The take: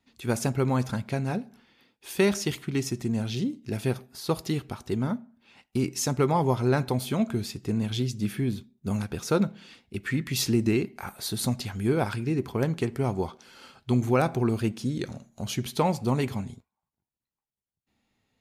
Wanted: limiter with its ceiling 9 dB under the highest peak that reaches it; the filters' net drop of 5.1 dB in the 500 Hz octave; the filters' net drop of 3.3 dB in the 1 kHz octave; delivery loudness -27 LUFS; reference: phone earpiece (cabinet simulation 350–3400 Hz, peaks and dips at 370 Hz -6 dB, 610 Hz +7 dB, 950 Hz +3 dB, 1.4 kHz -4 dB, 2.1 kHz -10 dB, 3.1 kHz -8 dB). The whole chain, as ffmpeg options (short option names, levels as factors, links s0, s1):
-af "equalizer=f=500:t=o:g=-3.5,equalizer=f=1000:t=o:g=-5,alimiter=limit=0.0944:level=0:latency=1,highpass=350,equalizer=f=370:t=q:w=4:g=-6,equalizer=f=610:t=q:w=4:g=7,equalizer=f=950:t=q:w=4:g=3,equalizer=f=1400:t=q:w=4:g=-4,equalizer=f=2100:t=q:w=4:g=-10,equalizer=f=3100:t=q:w=4:g=-8,lowpass=f=3400:w=0.5412,lowpass=f=3400:w=1.3066,volume=4.47"